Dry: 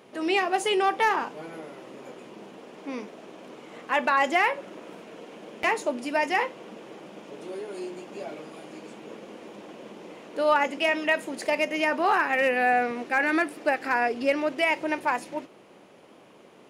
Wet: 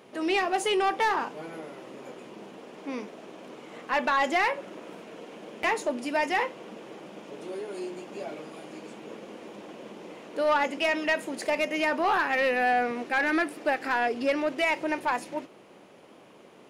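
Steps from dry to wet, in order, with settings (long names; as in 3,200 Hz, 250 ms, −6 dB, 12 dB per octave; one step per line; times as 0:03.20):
soft clipping −17 dBFS, distortion −17 dB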